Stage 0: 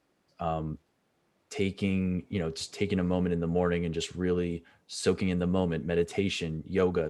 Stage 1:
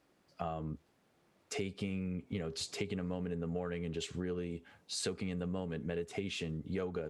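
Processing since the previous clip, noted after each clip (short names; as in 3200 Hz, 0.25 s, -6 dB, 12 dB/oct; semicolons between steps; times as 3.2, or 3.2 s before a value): compressor 6:1, threshold -36 dBFS, peak gain reduction 15 dB; gain +1 dB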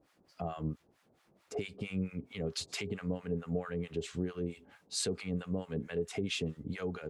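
in parallel at +1 dB: limiter -30.5 dBFS, peak gain reduction 8.5 dB; on the sum: harmonic tremolo 4.5 Hz, depth 100%, crossover 810 Hz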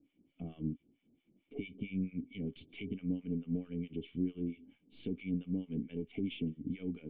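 half-wave gain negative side -3 dB; vocal tract filter i; gain +8.5 dB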